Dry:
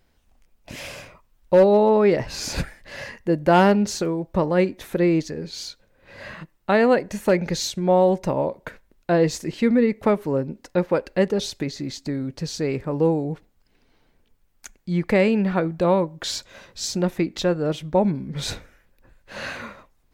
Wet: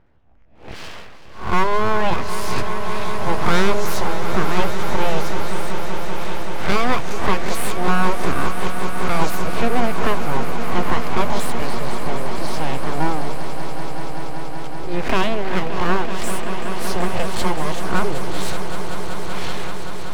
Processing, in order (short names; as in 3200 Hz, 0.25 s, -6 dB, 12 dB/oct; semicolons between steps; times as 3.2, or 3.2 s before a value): spectral swells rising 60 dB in 0.38 s; low-pass opened by the level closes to 1500 Hz, open at -17 dBFS; in parallel at -1.5 dB: compressor, threshold -32 dBFS, peak gain reduction 19.5 dB; on the sum: full-wave rectifier; swelling echo 0.191 s, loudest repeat 5, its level -12 dB